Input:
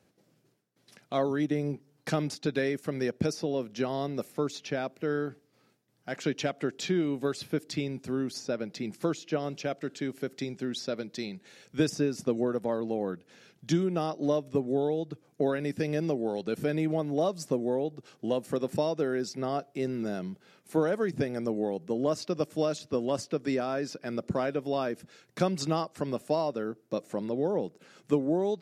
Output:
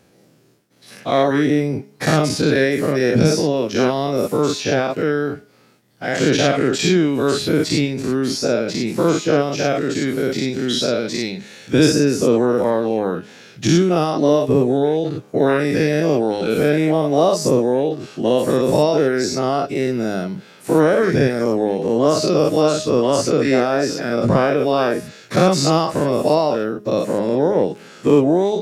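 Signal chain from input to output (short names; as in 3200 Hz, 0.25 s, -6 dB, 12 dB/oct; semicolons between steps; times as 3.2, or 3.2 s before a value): spectral dilation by 0.12 s; de-hum 207.3 Hz, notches 35; gain +9 dB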